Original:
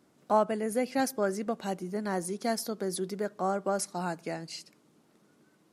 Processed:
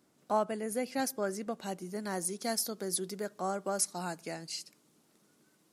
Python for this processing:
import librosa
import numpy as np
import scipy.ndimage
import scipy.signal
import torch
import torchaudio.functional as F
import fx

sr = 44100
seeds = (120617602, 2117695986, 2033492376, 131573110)

y = fx.high_shelf(x, sr, hz=3600.0, db=fx.steps((0.0, 6.0), (1.81, 11.0)))
y = y * librosa.db_to_amplitude(-5.0)